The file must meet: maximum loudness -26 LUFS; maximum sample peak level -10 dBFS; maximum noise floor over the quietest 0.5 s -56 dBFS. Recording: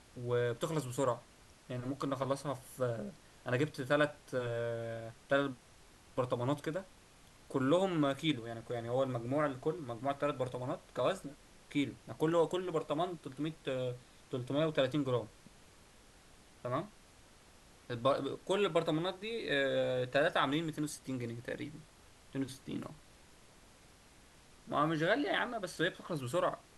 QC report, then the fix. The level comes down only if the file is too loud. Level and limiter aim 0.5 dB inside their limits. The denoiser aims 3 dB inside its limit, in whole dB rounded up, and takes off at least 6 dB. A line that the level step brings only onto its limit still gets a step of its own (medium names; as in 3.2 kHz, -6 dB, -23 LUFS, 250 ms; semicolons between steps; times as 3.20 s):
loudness -36.0 LUFS: pass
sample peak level -17.0 dBFS: pass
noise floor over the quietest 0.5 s -61 dBFS: pass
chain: none needed